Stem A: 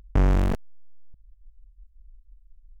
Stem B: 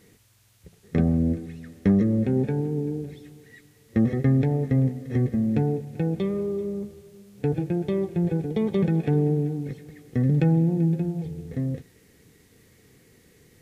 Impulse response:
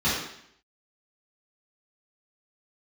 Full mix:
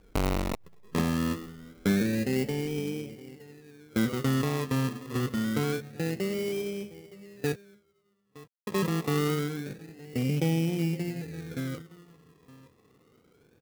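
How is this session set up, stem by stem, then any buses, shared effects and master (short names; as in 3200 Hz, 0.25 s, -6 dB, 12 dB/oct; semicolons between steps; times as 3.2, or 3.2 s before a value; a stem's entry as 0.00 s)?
-0.5 dB, 0.00 s, no send, no echo send, dry
-1.0 dB, 0.00 s, muted 7.56–8.67, no send, echo send -19.5 dB, polynomial smoothing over 65 samples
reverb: off
echo: echo 0.916 s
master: low shelf 170 Hz -12 dB; decimation with a swept rate 23×, swing 60% 0.26 Hz; clock jitter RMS 0.023 ms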